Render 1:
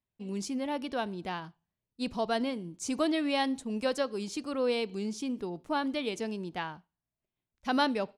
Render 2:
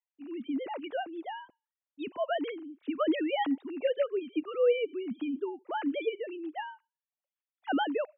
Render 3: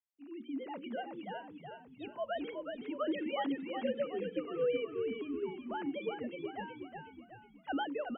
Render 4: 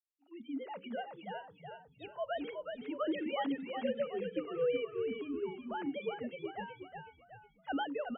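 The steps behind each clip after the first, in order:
sine-wave speech
notches 60/120/180/240/300/360/420/480/540 Hz; on a send: frequency-shifting echo 0.369 s, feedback 48%, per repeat -41 Hz, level -5 dB; on the sum: gain -6.5 dB
spectral noise reduction 21 dB

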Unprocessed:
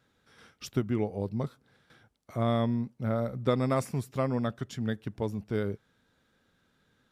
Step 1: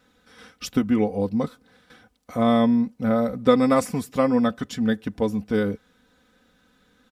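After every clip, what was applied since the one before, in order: comb 4 ms, depth 72%; gain +7 dB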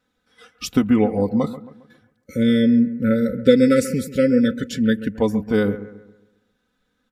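spectral delete 2.26–5.15, 580–1300 Hz; spectral noise reduction 14 dB; analogue delay 0.135 s, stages 2048, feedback 41%, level -14 dB; gain +4 dB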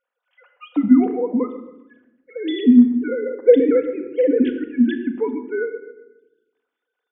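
sine-wave speech; reverb RT60 0.85 s, pre-delay 4 ms, DRR 4 dB; gain -3 dB

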